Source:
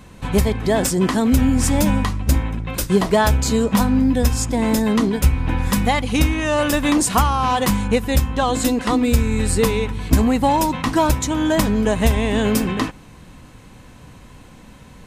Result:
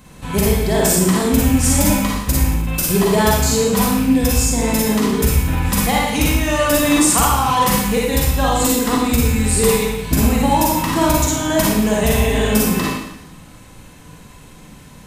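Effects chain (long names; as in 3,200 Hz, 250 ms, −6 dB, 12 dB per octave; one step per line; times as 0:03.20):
loose part that buzzes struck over −17 dBFS, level −23 dBFS
high-shelf EQ 6,900 Hz +9.5 dB
four-comb reverb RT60 0.87 s, DRR −4 dB
level −3.5 dB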